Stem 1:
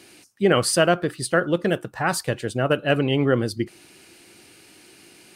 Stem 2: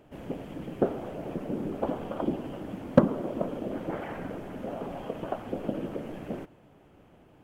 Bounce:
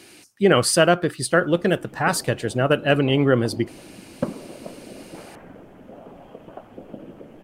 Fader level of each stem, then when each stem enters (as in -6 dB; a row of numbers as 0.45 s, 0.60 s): +2.0 dB, -6.5 dB; 0.00 s, 1.25 s